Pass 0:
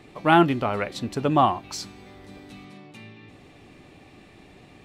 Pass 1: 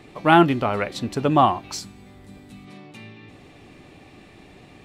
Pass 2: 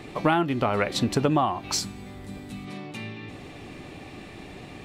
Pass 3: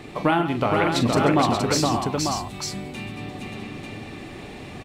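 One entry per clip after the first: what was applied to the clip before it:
time-frequency box 1.79–2.68 s, 270–6700 Hz -6 dB; trim +2.5 dB
compression 16:1, threshold -24 dBFS, peak gain reduction 15.5 dB; trim +5.5 dB
multi-tap echo 42/134/141/469/582/894 ms -10.5/-13/-18/-3.5/-7/-5 dB; trim +1 dB

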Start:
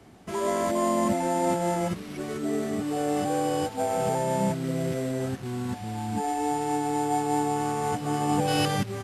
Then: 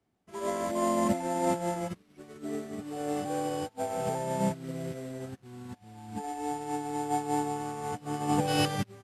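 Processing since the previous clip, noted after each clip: upward expansion 2.5:1, over -39 dBFS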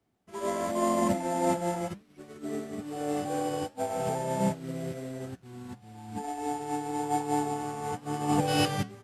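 flange 0.96 Hz, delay 6 ms, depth 6.9 ms, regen -80%; trim +5.5 dB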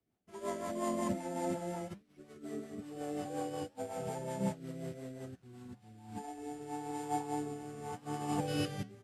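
rotary cabinet horn 5.5 Hz, later 0.9 Hz, at 5.46 s; trim -6 dB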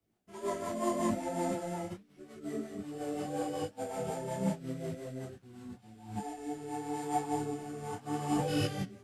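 in parallel at -4 dB: saturation -30 dBFS, distortion -16 dB; on the sum: detune thickener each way 28 cents; trim +3 dB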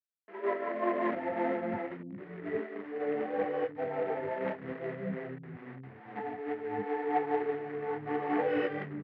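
companded quantiser 4-bit; cabinet simulation 150–2200 Hz, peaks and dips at 170 Hz -3 dB, 450 Hz +7 dB, 1.9 kHz +9 dB; bands offset in time highs, lows 620 ms, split 230 Hz; trim +1.5 dB

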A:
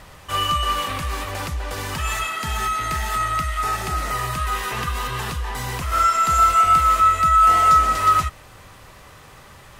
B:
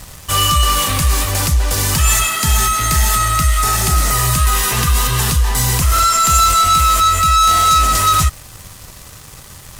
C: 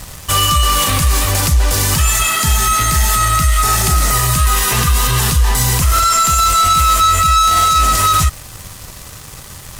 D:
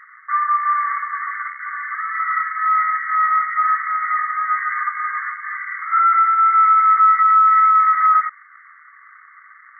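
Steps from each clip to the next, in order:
waveshaping leveller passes 2; tone controls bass +8 dB, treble +14 dB; trim -2 dB
peak limiter -8.5 dBFS, peak gain reduction 7 dB; trim +3.5 dB
rattle on loud lows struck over -14 dBFS, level -13 dBFS; brick-wall FIR band-pass 1.1–2.2 kHz

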